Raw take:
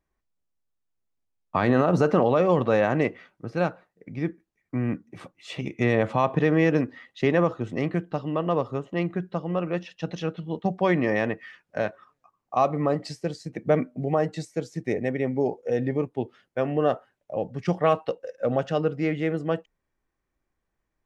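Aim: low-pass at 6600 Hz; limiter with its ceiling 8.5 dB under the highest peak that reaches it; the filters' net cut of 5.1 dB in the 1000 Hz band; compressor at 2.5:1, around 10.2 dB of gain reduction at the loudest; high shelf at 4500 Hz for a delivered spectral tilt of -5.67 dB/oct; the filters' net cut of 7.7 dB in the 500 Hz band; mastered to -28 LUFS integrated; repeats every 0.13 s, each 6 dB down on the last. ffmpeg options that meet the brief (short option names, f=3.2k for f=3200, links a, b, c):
-af "lowpass=6.6k,equalizer=f=500:t=o:g=-8.5,equalizer=f=1k:t=o:g=-4,highshelf=f=4.5k:g=7.5,acompressor=threshold=-35dB:ratio=2.5,alimiter=level_in=3.5dB:limit=-24dB:level=0:latency=1,volume=-3.5dB,aecho=1:1:130|260|390|520|650|780:0.501|0.251|0.125|0.0626|0.0313|0.0157,volume=10.5dB"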